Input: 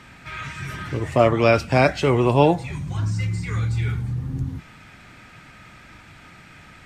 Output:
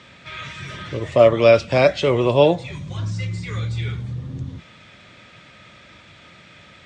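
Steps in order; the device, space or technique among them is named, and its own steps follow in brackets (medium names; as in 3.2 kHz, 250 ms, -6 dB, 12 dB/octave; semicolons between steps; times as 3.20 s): car door speaker (cabinet simulation 86–7500 Hz, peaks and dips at 140 Hz -3 dB, 270 Hz -4 dB, 560 Hz +8 dB, 810 Hz -6 dB, 1.5 kHz -4 dB, 3.5 kHz +8 dB)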